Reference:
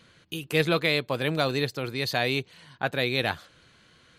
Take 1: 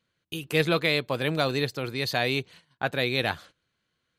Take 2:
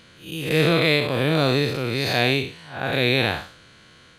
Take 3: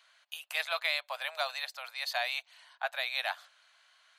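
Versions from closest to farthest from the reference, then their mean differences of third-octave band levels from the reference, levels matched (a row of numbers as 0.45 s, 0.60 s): 1, 2, 3; 3.0 dB, 4.5 dB, 11.5 dB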